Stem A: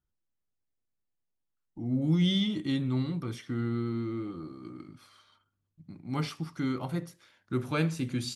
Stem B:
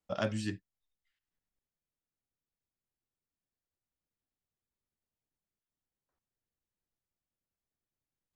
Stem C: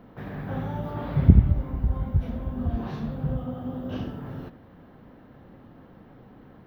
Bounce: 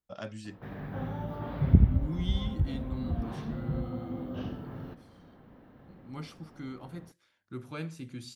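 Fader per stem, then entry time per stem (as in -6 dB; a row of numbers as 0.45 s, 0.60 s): -10.0 dB, -7.5 dB, -5.0 dB; 0.00 s, 0.00 s, 0.45 s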